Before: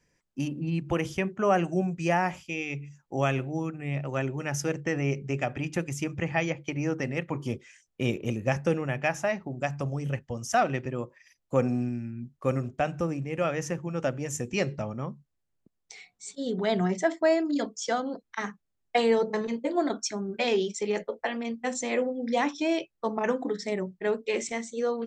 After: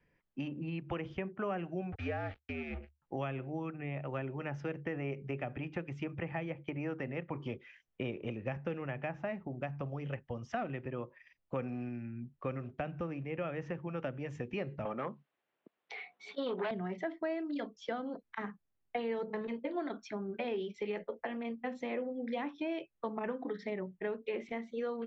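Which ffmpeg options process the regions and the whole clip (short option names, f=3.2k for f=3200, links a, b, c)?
-filter_complex "[0:a]asettb=1/sr,asplit=3[a][b][c];[a]atrim=end=1.924[d];[b]atrim=start=1.92:end=3.02,asetpts=PTS-STARTPTS,afade=t=in:d=0.004:c=qsin,afade=t=out:st=1.096:d=0.004:c=qsin,acrusher=bits=5:mix=0:aa=0.5,afreqshift=-73,asuperstop=centerf=1000:order=4:qfactor=4.1[e];[c]atrim=start=3.016[f];[d][e]acrossfade=d=0.004:c1=hsin:c2=qsin[g];[g][f]acrossfade=d=0.004:c1=qsin:c2=hsin,asettb=1/sr,asplit=3[h][i][j];[h]atrim=end=14.854[k];[i]atrim=start=14.85:end=16.71,asetpts=PTS-STARTPTS,afade=t=in:d=0.004:c=qsin,afade=t=out:st=1.856:d=0.004:c=qsin,aeval=exprs='0.188*sin(PI/2*2.82*val(0)/0.188)':c=same,highpass=450,lowpass=4.7k[l];[j]atrim=start=16.706[m];[k][l]acrossfade=d=0.004:c1=hsin:c2=qsin[n];[n][m]acrossfade=d=0.004:c1=qsin:c2=hsin,lowpass=f=3.2k:w=0.5412,lowpass=f=3.2k:w=1.3066,acrossover=split=410|1400[o][p][q];[o]acompressor=threshold=-38dB:ratio=4[r];[p]acompressor=threshold=-39dB:ratio=4[s];[q]acompressor=threshold=-46dB:ratio=4[t];[r][s][t]amix=inputs=3:normalize=0,volume=-2dB"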